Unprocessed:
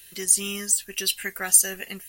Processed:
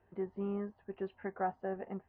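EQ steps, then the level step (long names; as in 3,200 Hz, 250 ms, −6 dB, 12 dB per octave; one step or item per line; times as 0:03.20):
high-pass filter 54 Hz
transistor ladder low-pass 1,000 Hz, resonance 50%
high-frequency loss of the air 230 metres
+7.5 dB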